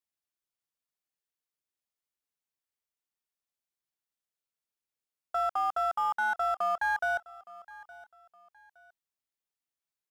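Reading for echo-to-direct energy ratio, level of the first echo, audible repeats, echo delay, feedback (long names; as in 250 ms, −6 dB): −19.5 dB, −20.0 dB, 2, 866 ms, 31%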